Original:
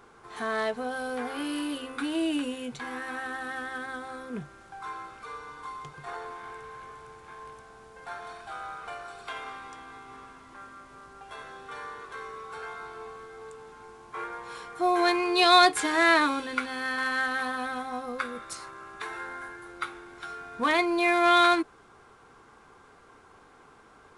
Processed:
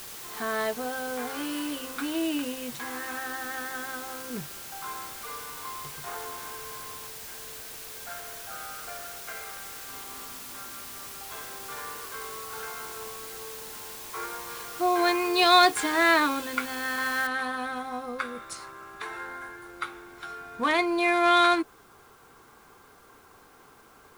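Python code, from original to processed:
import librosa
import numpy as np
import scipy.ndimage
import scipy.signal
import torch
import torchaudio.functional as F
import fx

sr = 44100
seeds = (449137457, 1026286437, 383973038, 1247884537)

y = fx.low_shelf(x, sr, hz=81.0, db=-12.0, at=(0.86, 4.25))
y = fx.fixed_phaser(y, sr, hz=970.0, stages=6, at=(7.08, 9.89))
y = fx.noise_floor_step(y, sr, seeds[0], at_s=17.27, before_db=-42, after_db=-63, tilt_db=0.0)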